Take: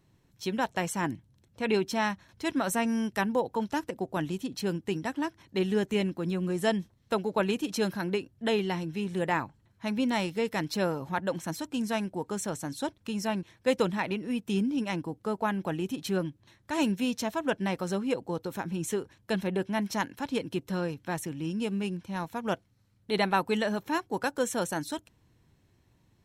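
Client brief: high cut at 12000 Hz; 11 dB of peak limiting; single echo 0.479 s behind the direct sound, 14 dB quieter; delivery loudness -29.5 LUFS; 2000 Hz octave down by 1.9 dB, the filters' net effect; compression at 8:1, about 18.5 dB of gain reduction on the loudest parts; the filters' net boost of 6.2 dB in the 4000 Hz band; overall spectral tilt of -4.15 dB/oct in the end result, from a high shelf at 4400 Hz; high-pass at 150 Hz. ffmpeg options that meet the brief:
-af "highpass=150,lowpass=12k,equalizer=f=2k:t=o:g=-5.5,equalizer=f=4k:t=o:g=6.5,highshelf=f=4.4k:g=6.5,acompressor=threshold=-41dB:ratio=8,alimiter=level_in=12dB:limit=-24dB:level=0:latency=1,volume=-12dB,aecho=1:1:479:0.2,volume=17dB"

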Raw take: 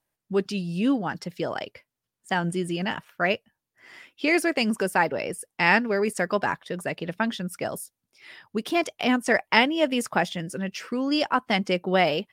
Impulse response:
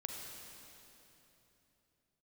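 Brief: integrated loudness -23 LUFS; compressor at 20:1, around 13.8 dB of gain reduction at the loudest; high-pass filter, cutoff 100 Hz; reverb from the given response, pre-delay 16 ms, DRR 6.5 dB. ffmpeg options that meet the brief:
-filter_complex "[0:a]highpass=100,acompressor=threshold=-27dB:ratio=20,asplit=2[a][b];[1:a]atrim=start_sample=2205,adelay=16[c];[b][c]afir=irnorm=-1:irlink=0,volume=-5.5dB[d];[a][d]amix=inputs=2:normalize=0,volume=9.5dB"

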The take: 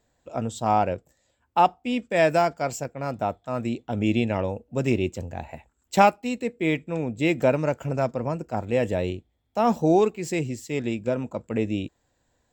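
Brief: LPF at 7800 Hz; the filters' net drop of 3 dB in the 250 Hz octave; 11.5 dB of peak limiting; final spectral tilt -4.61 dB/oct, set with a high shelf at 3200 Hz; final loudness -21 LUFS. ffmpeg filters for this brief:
-af "lowpass=7.8k,equalizer=f=250:t=o:g=-4,highshelf=f=3.2k:g=-7.5,volume=9dB,alimiter=limit=-8dB:level=0:latency=1"

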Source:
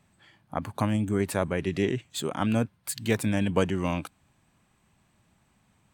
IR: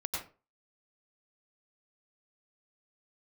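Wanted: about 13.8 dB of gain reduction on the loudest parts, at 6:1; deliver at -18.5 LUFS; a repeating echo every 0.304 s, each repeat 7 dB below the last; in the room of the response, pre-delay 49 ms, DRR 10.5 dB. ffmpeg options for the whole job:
-filter_complex "[0:a]acompressor=threshold=-34dB:ratio=6,aecho=1:1:304|608|912|1216|1520:0.447|0.201|0.0905|0.0407|0.0183,asplit=2[a][b];[1:a]atrim=start_sample=2205,adelay=49[c];[b][c]afir=irnorm=-1:irlink=0,volume=-14dB[d];[a][d]amix=inputs=2:normalize=0,volume=19.5dB"

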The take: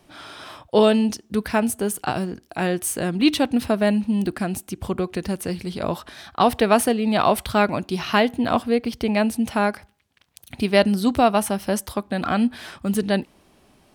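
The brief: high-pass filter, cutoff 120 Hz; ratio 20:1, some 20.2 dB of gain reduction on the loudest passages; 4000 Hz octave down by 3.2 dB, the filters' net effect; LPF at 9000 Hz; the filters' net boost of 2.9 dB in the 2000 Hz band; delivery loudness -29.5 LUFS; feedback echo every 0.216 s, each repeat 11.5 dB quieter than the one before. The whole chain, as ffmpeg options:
-af "highpass=120,lowpass=9k,equalizer=f=2k:t=o:g=5.5,equalizer=f=4k:t=o:g=-7,acompressor=threshold=-31dB:ratio=20,aecho=1:1:216|432|648:0.266|0.0718|0.0194,volume=7dB"

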